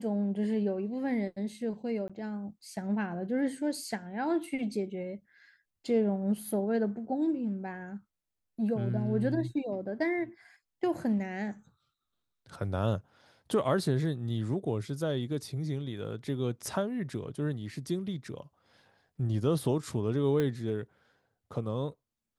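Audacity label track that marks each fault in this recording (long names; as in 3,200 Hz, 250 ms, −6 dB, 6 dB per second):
2.080000	2.100000	drop-out 16 ms
20.400000	20.400000	click −18 dBFS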